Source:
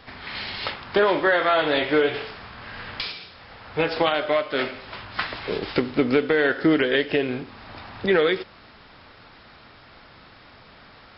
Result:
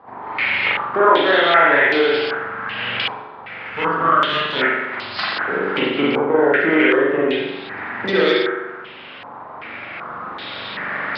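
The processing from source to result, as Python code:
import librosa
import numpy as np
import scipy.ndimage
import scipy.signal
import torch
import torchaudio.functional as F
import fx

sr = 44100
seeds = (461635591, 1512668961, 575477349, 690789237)

y = fx.lower_of_two(x, sr, delay_ms=0.64, at=(3.65, 4.56))
y = fx.recorder_agc(y, sr, target_db=-16.0, rise_db_per_s=5.3, max_gain_db=30)
y = 10.0 ** (-12.0 / 20.0) * np.tanh(y / 10.0 ** (-12.0 / 20.0))
y = scipy.signal.sosfilt(scipy.signal.butter(2, 170.0, 'highpass', fs=sr, output='sos'), y)
y = fx.rev_spring(y, sr, rt60_s=1.0, pass_ms=(42,), chirp_ms=55, drr_db=-5.5)
y = fx.filter_held_lowpass(y, sr, hz=2.6, low_hz=950.0, high_hz=4600.0)
y = y * librosa.db_to_amplitude(-1.5)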